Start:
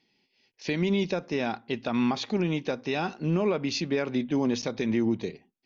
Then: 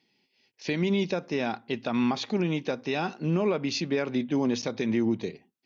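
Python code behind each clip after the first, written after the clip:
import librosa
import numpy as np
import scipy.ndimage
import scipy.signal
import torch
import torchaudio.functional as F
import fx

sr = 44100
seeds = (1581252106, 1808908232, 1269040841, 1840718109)

y = scipy.signal.sosfilt(scipy.signal.butter(2, 76.0, 'highpass', fs=sr, output='sos'), x)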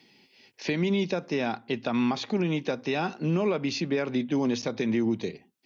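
y = fx.band_squash(x, sr, depth_pct=40)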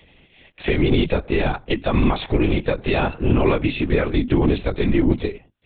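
y = fx.lpc_vocoder(x, sr, seeds[0], excitation='whisper', order=10)
y = y * librosa.db_to_amplitude(8.5)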